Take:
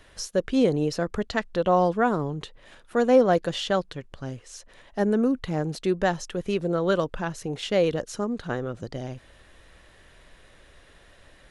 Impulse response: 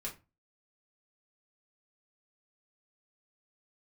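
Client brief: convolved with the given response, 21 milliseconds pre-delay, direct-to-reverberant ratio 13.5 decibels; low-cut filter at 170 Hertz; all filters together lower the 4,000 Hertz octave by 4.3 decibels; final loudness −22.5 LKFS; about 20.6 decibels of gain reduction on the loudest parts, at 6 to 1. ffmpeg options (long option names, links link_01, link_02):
-filter_complex "[0:a]highpass=170,equalizer=frequency=4000:width_type=o:gain=-6,acompressor=threshold=-36dB:ratio=6,asplit=2[link_01][link_02];[1:a]atrim=start_sample=2205,adelay=21[link_03];[link_02][link_03]afir=irnorm=-1:irlink=0,volume=-13dB[link_04];[link_01][link_04]amix=inputs=2:normalize=0,volume=18dB"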